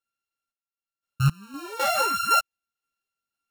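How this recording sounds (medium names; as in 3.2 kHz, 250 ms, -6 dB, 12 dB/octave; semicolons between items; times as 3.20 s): a buzz of ramps at a fixed pitch in blocks of 32 samples; random-step tremolo 3.9 Hz, depth 95%; a shimmering, thickened sound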